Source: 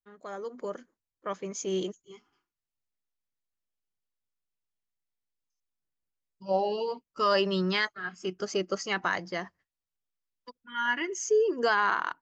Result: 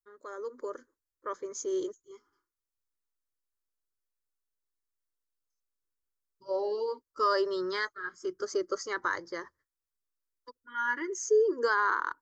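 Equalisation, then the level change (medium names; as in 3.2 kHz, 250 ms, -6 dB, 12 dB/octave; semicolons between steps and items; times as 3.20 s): static phaser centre 720 Hz, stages 6; 0.0 dB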